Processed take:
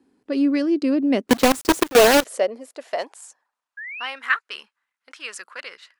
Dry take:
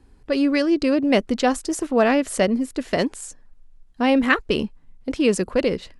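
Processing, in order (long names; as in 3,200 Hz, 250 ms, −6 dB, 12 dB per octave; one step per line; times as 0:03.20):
high-pass filter sweep 260 Hz → 1,400 Hz, 0:01.19–0:04.21
0:01.29–0:02.25: log-companded quantiser 2 bits
0:03.77–0:04.08: sound drawn into the spectrogram rise 1,600–3,200 Hz −27 dBFS
level −7 dB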